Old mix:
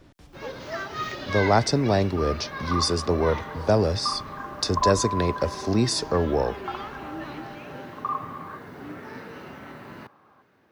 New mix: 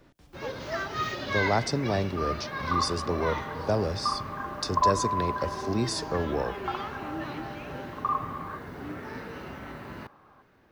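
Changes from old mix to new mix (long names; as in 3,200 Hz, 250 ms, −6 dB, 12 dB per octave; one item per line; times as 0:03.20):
speech −7.0 dB
first sound: remove high-pass filter 110 Hz
reverb: on, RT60 1.3 s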